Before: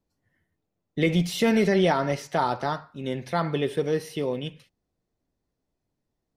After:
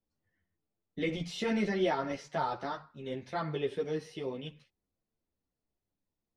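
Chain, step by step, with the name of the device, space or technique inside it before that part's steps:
string-machine ensemble chorus (string-ensemble chorus; low-pass filter 6,500 Hz 12 dB per octave)
level −5.5 dB

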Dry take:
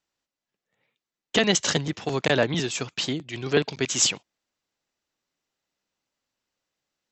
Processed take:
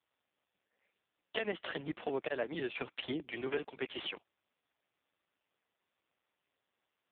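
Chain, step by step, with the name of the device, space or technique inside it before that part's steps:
0:01.68–0:02.95: dynamic equaliser 1,100 Hz, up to −4 dB, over −46 dBFS, Q 4.3
voicemail (band-pass filter 300–3,000 Hz; downward compressor 6 to 1, threshold −31 dBFS, peak gain reduction 13.5 dB; AMR narrowband 4.75 kbit/s 8,000 Hz)

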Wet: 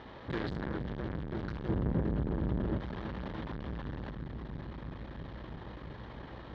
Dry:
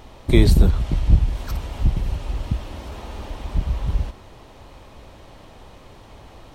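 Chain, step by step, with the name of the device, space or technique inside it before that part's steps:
analogue delay pedal into a guitar amplifier (bucket-brigade delay 329 ms, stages 1,024, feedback 80%, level −8.5 dB; tube saturation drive 31 dB, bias 0.35; loudspeaker in its box 84–3,800 Hz, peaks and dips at 90 Hz −7 dB, 700 Hz −4 dB, 1,700 Hz +7 dB, 2,600 Hz −7 dB)
0:01.69–0:02.78: tilt shelving filter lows +7.5 dB, about 1,300 Hz

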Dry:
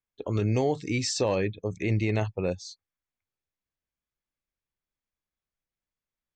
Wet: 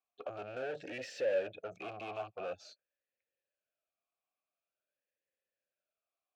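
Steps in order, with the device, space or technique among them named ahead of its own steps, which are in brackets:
talk box (tube saturation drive 38 dB, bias 0.2; formant filter swept between two vowels a-e 0.47 Hz)
level +13 dB

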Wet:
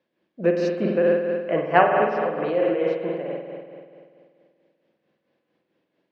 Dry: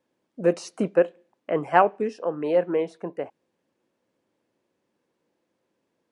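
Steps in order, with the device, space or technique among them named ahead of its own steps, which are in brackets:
combo amplifier with spring reverb and tremolo (spring reverb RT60 2.2 s, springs 48 ms, chirp 65 ms, DRR −1.5 dB; amplitude tremolo 4.5 Hz, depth 50%; loudspeaker in its box 98–4,600 Hz, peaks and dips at 110 Hz −8 dB, 260 Hz −7 dB, 470 Hz −4 dB, 900 Hz −7 dB, 1,300 Hz −4 dB)
level +4 dB

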